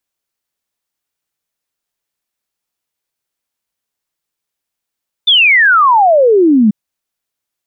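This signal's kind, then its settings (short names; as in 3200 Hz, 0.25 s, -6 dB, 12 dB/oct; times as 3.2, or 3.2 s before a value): log sweep 3600 Hz -> 200 Hz 1.44 s -5 dBFS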